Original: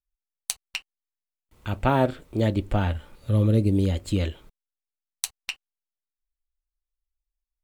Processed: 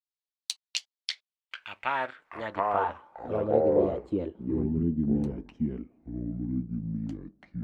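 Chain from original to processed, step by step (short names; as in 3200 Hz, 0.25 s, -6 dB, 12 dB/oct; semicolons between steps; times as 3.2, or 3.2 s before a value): bell 960 Hz +6.5 dB 0.67 oct; echoes that change speed 0.1 s, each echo -5 st, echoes 2; in parallel at -3 dB: crossover distortion -39.5 dBFS; on the sum: band-pass sweep 4100 Hz -> 240 Hz, 1.03–4.77; gain -1.5 dB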